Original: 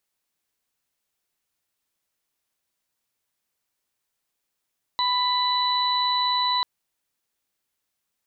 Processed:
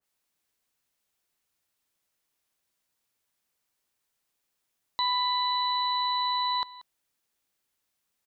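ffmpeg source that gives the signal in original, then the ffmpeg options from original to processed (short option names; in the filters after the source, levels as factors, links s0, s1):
-f lavfi -i "aevalsrc='0.075*sin(2*PI*993*t)+0.0178*sin(2*PI*1986*t)+0.0075*sin(2*PI*2979*t)+0.0668*sin(2*PI*3972*t)':d=1.64:s=44100"
-af "alimiter=limit=0.0841:level=0:latency=1:release=22,aecho=1:1:184:0.119,adynamicequalizer=threshold=0.01:dfrequency=2000:dqfactor=0.7:tfrequency=2000:tqfactor=0.7:attack=5:release=100:ratio=0.375:range=2:mode=cutabove:tftype=highshelf"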